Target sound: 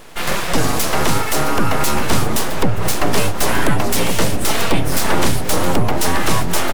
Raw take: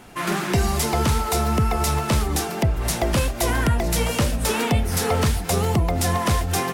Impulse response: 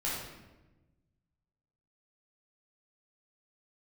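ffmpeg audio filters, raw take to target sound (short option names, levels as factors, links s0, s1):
-filter_complex "[0:a]aeval=exprs='abs(val(0))':c=same,asplit=2[s0][s1];[s1]adelay=1458,volume=0.398,highshelf=f=4000:g=-32.8[s2];[s0][s2]amix=inputs=2:normalize=0,volume=2.24"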